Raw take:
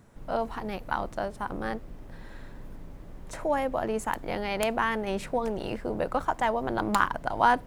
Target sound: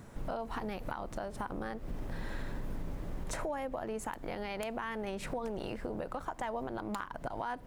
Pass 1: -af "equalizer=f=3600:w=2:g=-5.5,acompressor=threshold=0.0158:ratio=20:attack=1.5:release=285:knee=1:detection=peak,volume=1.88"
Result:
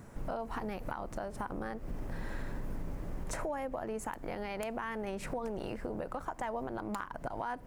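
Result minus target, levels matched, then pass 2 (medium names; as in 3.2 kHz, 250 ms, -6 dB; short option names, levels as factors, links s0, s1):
4 kHz band -3.5 dB
-af "acompressor=threshold=0.0158:ratio=20:attack=1.5:release=285:knee=1:detection=peak,volume=1.88"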